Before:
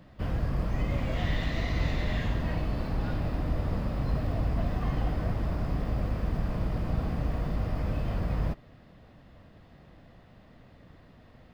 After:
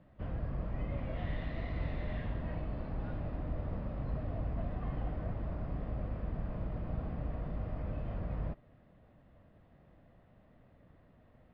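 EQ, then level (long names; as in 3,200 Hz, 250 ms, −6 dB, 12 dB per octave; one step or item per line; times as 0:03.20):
high-frequency loss of the air 350 metres
parametric band 600 Hz +3.5 dB 0.38 octaves
−8.0 dB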